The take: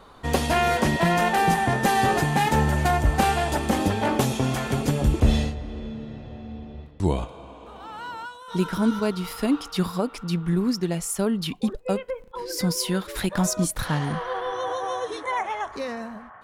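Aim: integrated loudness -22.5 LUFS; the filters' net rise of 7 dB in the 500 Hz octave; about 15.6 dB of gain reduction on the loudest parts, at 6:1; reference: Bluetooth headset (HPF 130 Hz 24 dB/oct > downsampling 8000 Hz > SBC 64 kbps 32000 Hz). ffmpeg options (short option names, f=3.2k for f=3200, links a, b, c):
-af "equalizer=f=500:t=o:g=9,acompressor=threshold=-30dB:ratio=6,highpass=f=130:w=0.5412,highpass=f=130:w=1.3066,aresample=8000,aresample=44100,volume=11.5dB" -ar 32000 -c:a sbc -b:a 64k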